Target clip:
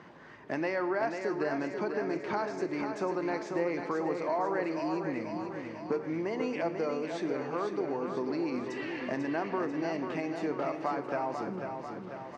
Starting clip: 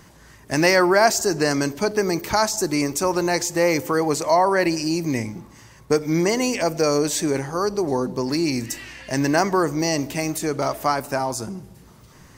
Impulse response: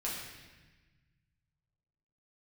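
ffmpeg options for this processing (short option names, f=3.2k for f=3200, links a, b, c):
-filter_complex "[0:a]aemphasis=mode=reproduction:type=75kf,acompressor=threshold=-33dB:ratio=4,highpass=230,lowpass=3.3k,aecho=1:1:493|986|1479|1972|2465|2958|3451|3944:0.473|0.279|0.165|0.0972|0.0573|0.0338|0.02|0.0118,asplit=2[a][b];[1:a]atrim=start_sample=2205[c];[b][c]afir=irnorm=-1:irlink=0,volume=-12.5dB[d];[a][d]amix=inputs=2:normalize=0"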